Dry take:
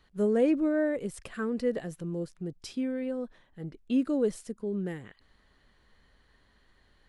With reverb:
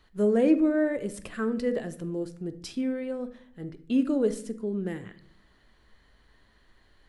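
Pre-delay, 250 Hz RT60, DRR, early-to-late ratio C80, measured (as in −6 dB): 3 ms, 0.85 s, 9.5 dB, 19.0 dB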